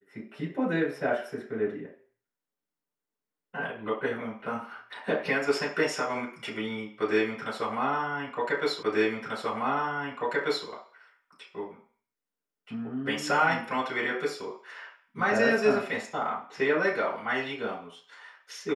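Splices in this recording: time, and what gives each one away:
8.83 s: repeat of the last 1.84 s

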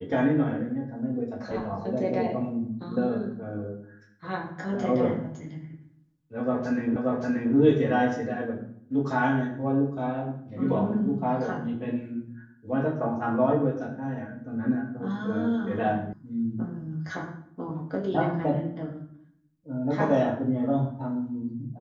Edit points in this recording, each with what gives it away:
6.96 s: repeat of the last 0.58 s
16.13 s: sound stops dead

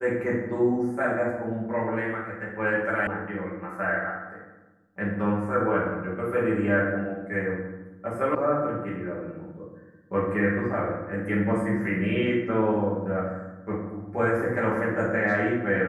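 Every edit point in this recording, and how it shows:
3.07 s: sound stops dead
8.35 s: sound stops dead

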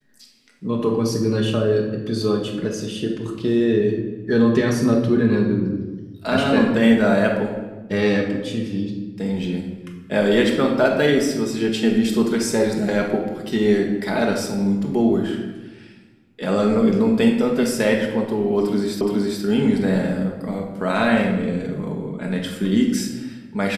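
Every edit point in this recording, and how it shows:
19.01 s: repeat of the last 0.42 s

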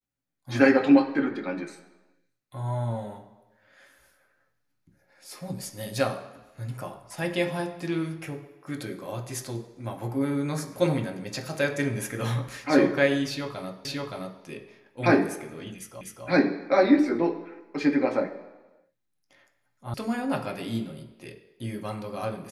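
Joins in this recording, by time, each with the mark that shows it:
13.85 s: repeat of the last 0.57 s
16.01 s: repeat of the last 0.25 s
19.94 s: sound stops dead

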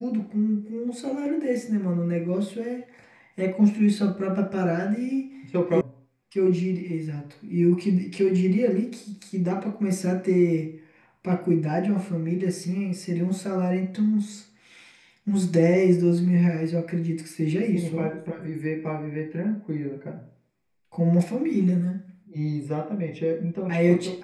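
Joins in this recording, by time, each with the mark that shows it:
5.81 s: sound stops dead

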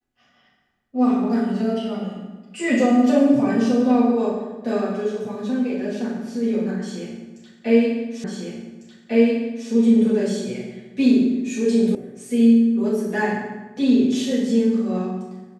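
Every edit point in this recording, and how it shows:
8.24 s: repeat of the last 1.45 s
11.95 s: sound stops dead

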